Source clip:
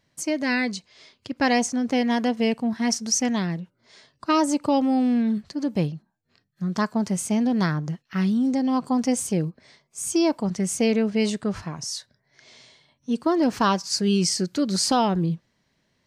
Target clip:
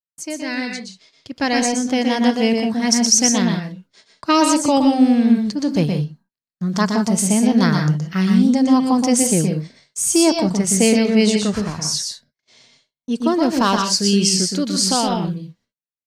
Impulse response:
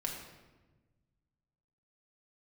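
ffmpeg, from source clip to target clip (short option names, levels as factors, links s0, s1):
-filter_complex "[0:a]agate=range=0.00891:threshold=0.00355:ratio=16:detection=peak,dynaudnorm=f=290:g=11:m=3.76,asplit=2[s0][s1];[1:a]atrim=start_sample=2205,atrim=end_sample=3087,adelay=120[s2];[s1][s2]afir=irnorm=-1:irlink=0,volume=0.668[s3];[s0][s3]amix=inputs=2:normalize=0,adynamicequalizer=threshold=0.00447:dfrequency=3000:dqfactor=0.7:tfrequency=3000:tqfactor=0.7:attack=5:release=100:ratio=0.375:range=2.5:mode=boostabove:tftype=highshelf,volume=0.668"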